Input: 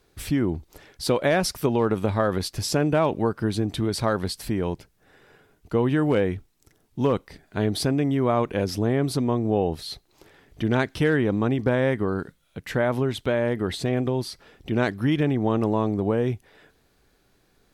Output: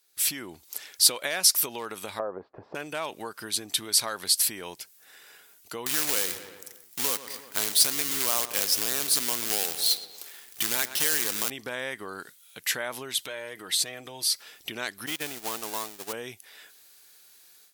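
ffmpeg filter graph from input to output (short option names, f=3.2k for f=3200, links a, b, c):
-filter_complex "[0:a]asettb=1/sr,asplit=3[a][b][c];[a]atrim=end=2.194[d];[b]atrim=start=2.19:end=2.75,asetpts=PTS-STARTPTS,afade=t=in:d=0.004:c=qsin,afade=t=out:st=0.556:d=0.004:c=qsin,lowpass=f=1.1k:w=0.5412,lowpass=f=1.1k:w=1.3066,equalizer=f=500:w=0.77:g=9[e];[c]atrim=start=2.746[f];[d][e]acrossfade=d=0.004:c1=hsin:c2=qsin[g];[g][f]acrossfade=d=0.004:c1=qsin:c2=hsin,asettb=1/sr,asplit=3[h][i][j];[h]atrim=end=5.864[k];[i]atrim=start=5.86:end=11.5,asetpts=PTS-STARTPTS,afade=t=in:d=0.004:c=qsin,afade=t=out:st=5.636:d=0.004:c=qsin,acrusher=bits=2:mode=log:mix=0:aa=0.000001,asplit=2[l][m];[m]adelay=117,lowpass=f=3.5k:p=1,volume=-14dB,asplit=2[n][o];[o]adelay=117,lowpass=f=3.5k:p=1,volume=0.54,asplit=2[p][q];[q]adelay=117,lowpass=f=3.5k:p=1,volume=0.54,asplit=2[r][s];[s]adelay=117,lowpass=f=3.5k:p=1,volume=0.54,asplit=2[t][u];[u]adelay=117,lowpass=f=3.5k:p=1,volume=0.54[v];[l][n][p][r][t][v]amix=inputs=6:normalize=0,atrim=end_sample=248724[w];[j]atrim=start=11.496[x];[k][w]acrossfade=d=0.004:c1=hsin:c2=qsin[y];[y][x]acrossfade=d=0.004:c1=qsin:c2=hsin,asettb=1/sr,asplit=3[z][aa][ab];[z]atrim=end=13.184[ac];[aa]atrim=start=13.18:end=14.3,asetpts=PTS-STARTPTS,afade=t=in:d=0.004:c=qsin,afade=t=out:st=1.116:d=0.004:c=qsin,aecho=1:1:6.4:0.41,atrim=end_sample=49392,acompressor=threshold=-35dB:ratio=2:attack=3.2:release=140:knee=1:detection=peak[ad];[ab]atrim=start=14.296[ae];[ac][ad]acrossfade=d=0.004:c1=hsin:c2=qsin[af];[af][ae]acrossfade=d=0.004:c1=qsin:c2=hsin,asettb=1/sr,asplit=3[ag][ah][ai];[ag]atrim=end=15.064[aj];[ah]atrim=start=15.06:end=16.13,asetpts=PTS-STARTPTS,afade=t=in:d=0.004:c=qsin,afade=t=out:st=1.066:d=0.004:c=qsin,aeval=exprs='val(0)+0.5*0.0531*sgn(val(0))':c=same,agate=range=-23dB:threshold=-20dB:ratio=16:release=100:detection=peak[ak];[ai]atrim=start=16.126[al];[aj][ak]acrossfade=d=0.004:c1=hsin:c2=qsin[am];[am][al]acrossfade=d=0.004:c1=qsin:c2=hsin,acompressor=threshold=-28dB:ratio=2.5,aderivative,dynaudnorm=f=140:g=3:m=14dB,volume=2dB"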